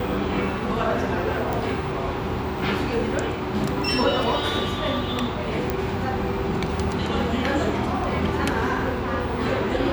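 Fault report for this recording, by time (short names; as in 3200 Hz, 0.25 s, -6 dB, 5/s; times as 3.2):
1.53 pop
5.7 pop -10 dBFS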